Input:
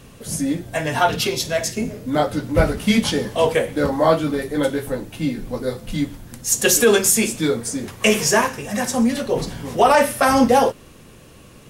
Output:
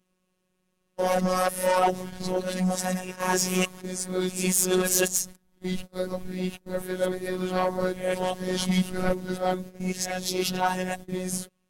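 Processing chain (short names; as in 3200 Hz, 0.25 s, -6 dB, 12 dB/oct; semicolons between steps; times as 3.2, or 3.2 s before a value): whole clip reversed; gate -30 dBFS, range -25 dB; dynamic EQ 2100 Hz, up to -4 dB, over -29 dBFS, Q 0.76; soft clip -13 dBFS, distortion -13 dB; robotiser 184 Hz; gain -2 dB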